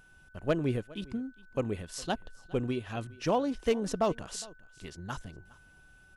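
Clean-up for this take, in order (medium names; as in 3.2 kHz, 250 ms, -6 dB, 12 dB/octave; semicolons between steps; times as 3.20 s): clip repair -19 dBFS; band-stop 1.5 kHz, Q 30; inverse comb 410 ms -22 dB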